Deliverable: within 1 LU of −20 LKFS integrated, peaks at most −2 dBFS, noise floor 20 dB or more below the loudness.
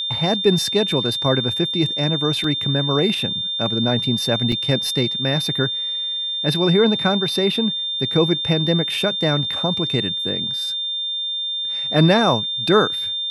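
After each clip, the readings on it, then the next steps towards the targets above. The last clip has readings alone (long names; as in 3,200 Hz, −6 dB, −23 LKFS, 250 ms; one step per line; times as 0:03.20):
number of dropouts 2; longest dropout 2.7 ms; interfering tone 3,600 Hz; level of the tone −22 dBFS; integrated loudness −19.0 LKFS; sample peak −4.0 dBFS; target loudness −20.0 LKFS
→ repair the gap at 0:02.44/0:04.52, 2.7 ms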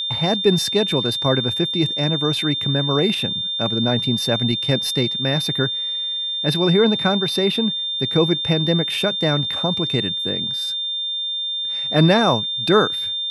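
number of dropouts 0; interfering tone 3,600 Hz; level of the tone −22 dBFS
→ notch filter 3,600 Hz, Q 30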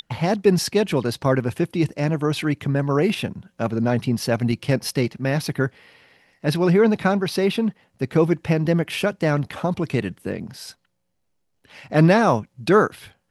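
interfering tone none found; integrated loudness −21.5 LKFS; sample peak −4.5 dBFS; target loudness −20.0 LKFS
→ level +1.5 dB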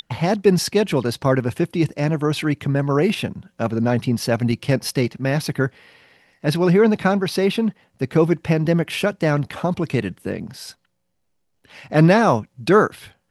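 integrated loudness −20.0 LKFS; sample peak −3.0 dBFS; background noise floor −69 dBFS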